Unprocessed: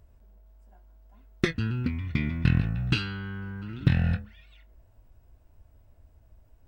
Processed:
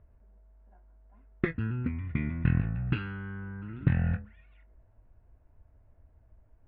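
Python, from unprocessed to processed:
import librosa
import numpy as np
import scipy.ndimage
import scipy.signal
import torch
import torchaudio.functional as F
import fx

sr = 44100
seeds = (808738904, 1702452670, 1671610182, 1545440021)

y = scipy.signal.sosfilt(scipy.signal.butter(4, 2200.0, 'lowpass', fs=sr, output='sos'), x)
y = y * librosa.db_to_amplitude(-3.0)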